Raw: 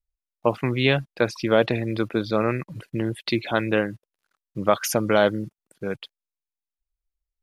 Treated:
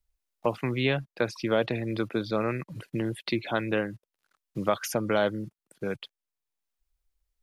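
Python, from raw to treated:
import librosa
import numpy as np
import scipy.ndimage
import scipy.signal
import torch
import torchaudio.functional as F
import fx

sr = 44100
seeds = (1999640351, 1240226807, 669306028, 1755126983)

y = fx.band_squash(x, sr, depth_pct=40)
y = y * 10.0 ** (-5.5 / 20.0)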